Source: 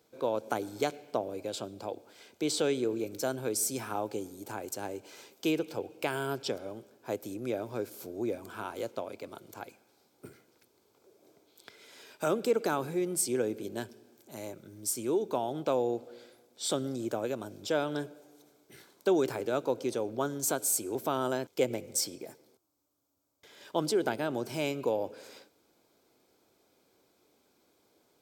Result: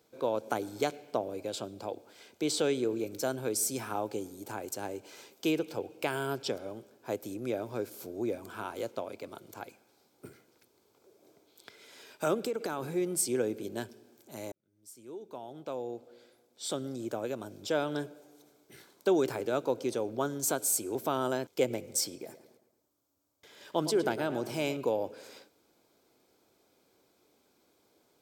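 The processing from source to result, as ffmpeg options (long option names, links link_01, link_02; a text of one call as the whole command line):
ffmpeg -i in.wav -filter_complex "[0:a]asettb=1/sr,asplit=3[link_01][link_02][link_03];[link_01]atrim=end=12.344[link_04];[link_02]atrim=start=12.34:end=12.83,asetpts=PTS-STARTPTS,afade=type=in:duration=0.004:curve=qsin,afade=type=out:start_time=0.486:duration=0.004:curve=qsin,acompressor=threshold=-29dB:ratio=6:attack=3.2:release=140:knee=1:detection=peak[link_05];[link_03]atrim=start=12.826[link_06];[link_04][link_05]acrossfade=duration=0.004:curve1=hsin:curve2=qsin[link_07];[link_07][link_06]acrossfade=duration=0.004:curve1=qsin:curve2=hsin,asettb=1/sr,asplit=3[link_08][link_09][link_10];[link_08]atrim=end=22.174[link_11];[link_09]atrim=start=22.17:end=24.77,asetpts=PTS-STARTPTS,afade=type=in:duration=0.004:curve=qsin,afade=type=out:start_time=2.596:duration=0.004:curve=qsin,asplit=2[link_12][link_13];[link_13]adelay=110,lowpass=frequency=4100:poles=1,volume=-12dB,asplit=2[link_14][link_15];[link_15]adelay=110,lowpass=frequency=4100:poles=1,volume=0.49,asplit=2[link_16][link_17];[link_17]adelay=110,lowpass=frequency=4100:poles=1,volume=0.49,asplit=2[link_18][link_19];[link_19]adelay=110,lowpass=frequency=4100:poles=1,volume=0.49,asplit=2[link_20][link_21];[link_21]adelay=110,lowpass=frequency=4100:poles=1,volume=0.49[link_22];[link_12][link_14][link_16][link_18][link_20][link_22]amix=inputs=6:normalize=0,atrim=end_sample=114660[link_23];[link_10]atrim=start=24.766[link_24];[link_11][link_23]acrossfade=duration=0.004:curve1=hsin:curve2=qsin[link_25];[link_25][link_24]acrossfade=duration=0.004:curve1=qsin:curve2=hsin,asplit=2[link_26][link_27];[link_26]atrim=end=14.52,asetpts=PTS-STARTPTS,afade=type=out:start_time=14.516:duration=0.004:curve=hsin[link_28];[link_27]atrim=start=14.52,asetpts=PTS-STARTPTS,afade=type=in:duration=3.4[link_29];[link_28][link_29]concat=n=2:v=0:a=1" out.wav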